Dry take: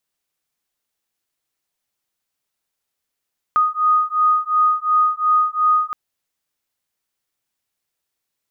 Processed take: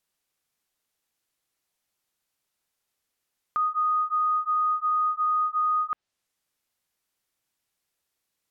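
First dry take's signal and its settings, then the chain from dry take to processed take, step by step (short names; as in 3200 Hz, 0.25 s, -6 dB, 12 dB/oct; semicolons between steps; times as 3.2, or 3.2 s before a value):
beating tones 1240 Hz, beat 2.8 Hz, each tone -17 dBFS 2.37 s
treble ducked by the level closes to 1000 Hz, closed at -16 dBFS; limiter -20.5 dBFS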